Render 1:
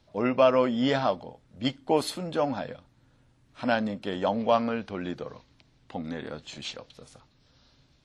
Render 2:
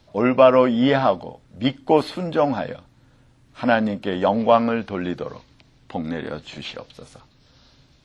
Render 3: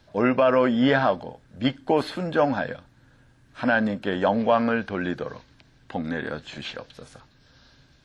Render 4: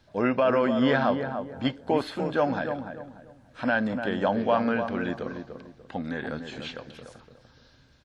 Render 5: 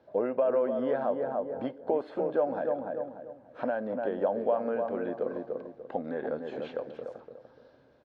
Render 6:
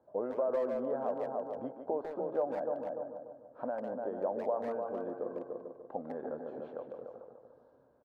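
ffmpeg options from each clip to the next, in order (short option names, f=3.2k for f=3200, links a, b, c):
-filter_complex "[0:a]acrossover=split=3500[a][b];[b]acompressor=threshold=-55dB:ratio=4:attack=1:release=60[c];[a][c]amix=inputs=2:normalize=0,volume=7.5dB"
-af "equalizer=f=1.6k:w=6.8:g=10.5,alimiter=level_in=6dB:limit=-1dB:release=50:level=0:latency=1,volume=-8dB"
-filter_complex "[0:a]asplit=2[a][b];[b]adelay=293,lowpass=f=1.2k:p=1,volume=-6.5dB,asplit=2[c][d];[d]adelay=293,lowpass=f=1.2k:p=1,volume=0.33,asplit=2[e][f];[f]adelay=293,lowpass=f=1.2k:p=1,volume=0.33,asplit=2[g][h];[h]adelay=293,lowpass=f=1.2k:p=1,volume=0.33[i];[a][c][e][g][i]amix=inputs=5:normalize=0,volume=-3.5dB"
-af "acompressor=threshold=-33dB:ratio=3,bandpass=f=520:t=q:w=1.9:csg=0,volume=9dB"
-filter_complex "[0:a]highshelf=f=1.6k:t=q:w=1.5:g=-12.5,asplit=2[a][b];[b]adelay=150,highpass=300,lowpass=3.4k,asoftclip=type=hard:threshold=-22dB,volume=-6dB[c];[a][c]amix=inputs=2:normalize=0,volume=-7.5dB"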